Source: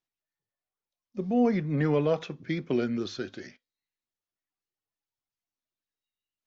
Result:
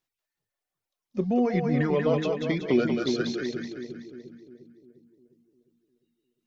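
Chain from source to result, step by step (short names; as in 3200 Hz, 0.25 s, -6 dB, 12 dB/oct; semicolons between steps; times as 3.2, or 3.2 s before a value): reverb removal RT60 2 s; 1.26–2.72 compressor 2:1, threshold -30 dBFS, peak gain reduction 6 dB; split-band echo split 420 Hz, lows 0.353 s, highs 0.188 s, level -3.5 dB; gain +5.5 dB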